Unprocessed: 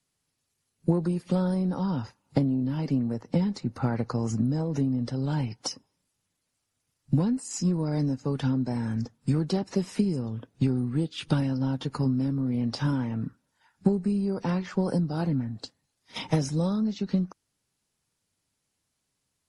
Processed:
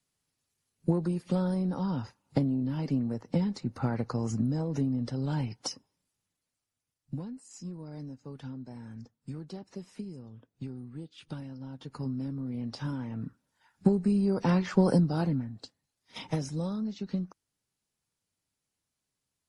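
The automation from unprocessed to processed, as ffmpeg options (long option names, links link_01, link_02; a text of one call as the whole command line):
ffmpeg -i in.wav -af "volume=15.5dB,afade=type=out:start_time=5.69:duration=1.59:silence=0.251189,afade=type=in:start_time=11.7:duration=0.43:silence=0.446684,afade=type=in:start_time=12.98:duration=1.89:silence=0.266073,afade=type=out:start_time=14.87:duration=0.63:silence=0.316228" out.wav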